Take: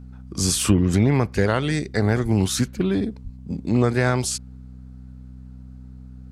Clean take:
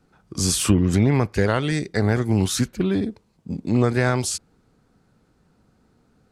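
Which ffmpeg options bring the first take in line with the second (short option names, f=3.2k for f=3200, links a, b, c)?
-filter_complex "[0:a]bandreject=f=63.5:t=h:w=4,bandreject=f=127:t=h:w=4,bandreject=f=190.5:t=h:w=4,bandreject=f=254:t=h:w=4,asplit=3[a][b][c];[a]afade=t=out:st=2.22:d=0.02[d];[b]highpass=f=140:w=0.5412,highpass=f=140:w=1.3066,afade=t=in:st=2.22:d=0.02,afade=t=out:st=2.34:d=0.02[e];[c]afade=t=in:st=2.34:d=0.02[f];[d][e][f]amix=inputs=3:normalize=0,asplit=3[g][h][i];[g]afade=t=out:st=3.23:d=0.02[j];[h]highpass=f=140:w=0.5412,highpass=f=140:w=1.3066,afade=t=in:st=3.23:d=0.02,afade=t=out:st=3.35:d=0.02[k];[i]afade=t=in:st=3.35:d=0.02[l];[j][k][l]amix=inputs=3:normalize=0"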